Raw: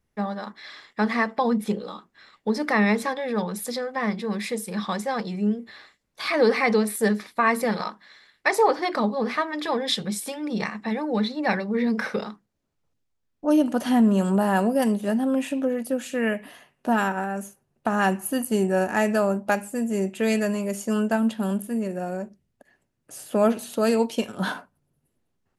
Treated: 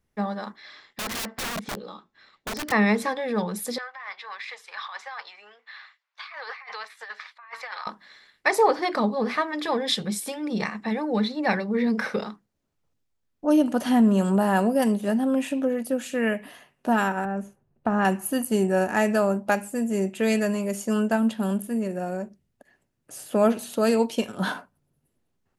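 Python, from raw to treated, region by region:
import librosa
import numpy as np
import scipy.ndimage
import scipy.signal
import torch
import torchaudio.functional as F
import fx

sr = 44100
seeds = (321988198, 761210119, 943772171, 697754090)

y = fx.chain(x, sr, fx.lowpass(hz=6800.0, slope=24),
    fx.comb_fb(f0_hz=120.0, decay_s=0.32, harmonics='odd', damping=0.0, mix_pct=40),
    fx.overflow_wrap(gain_db=26.0), at=(0.56, 2.72))
y = fx.chain(y, sr, fx.highpass(hz=970.0, slope=24),
    fx.over_compress(threshold_db=-36.0, ratio=-1.0),
    fx.air_absorb(metres=200.0), at=(3.78, 7.87))
y = fx.chain(y, sr, fx.lowpass(hz=1400.0, slope=6),
    fx.low_shelf(hz=120.0, db=8.0), at=(17.25, 18.05))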